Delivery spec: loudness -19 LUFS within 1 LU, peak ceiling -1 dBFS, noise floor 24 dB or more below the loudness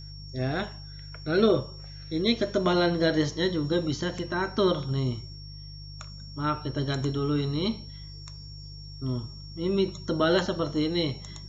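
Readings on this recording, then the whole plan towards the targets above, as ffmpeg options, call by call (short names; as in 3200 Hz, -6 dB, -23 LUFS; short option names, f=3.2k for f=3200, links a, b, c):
hum 50 Hz; harmonics up to 150 Hz; hum level -41 dBFS; steady tone 5500 Hz; tone level -46 dBFS; loudness -27.5 LUFS; peak -8.5 dBFS; loudness target -19.0 LUFS
-> -af "bandreject=f=50:t=h:w=4,bandreject=f=100:t=h:w=4,bandreject=f=150:t=h:w=4"
-af "bandreject=f=5.5k:w=30"
-af "volume=8.5dB,alimiter=limit=-1dB:level=0:latency=1"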